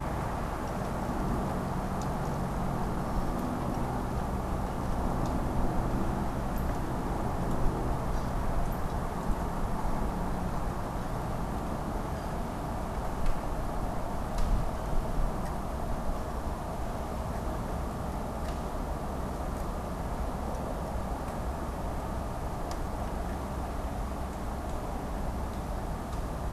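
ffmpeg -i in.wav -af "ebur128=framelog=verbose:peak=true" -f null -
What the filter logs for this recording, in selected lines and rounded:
Integrated loudness:
  I:         -34.4 LUFS
  Threshold: -44.4 LUFS
Loudness range:
  LRA:         3.2 LU
  Threshold: -54.4 LUFS
  LRA low:   -36.0 LUFS
  LRA high:  -32.8 LUFS
True peak:
  Peak:      -14.6 dBFS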